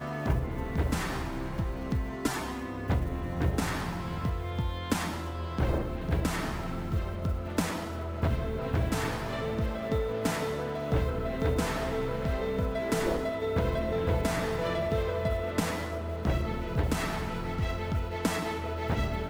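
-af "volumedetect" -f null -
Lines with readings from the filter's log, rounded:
mean_volume: -30.3 dB
max_volume: -13.1 dB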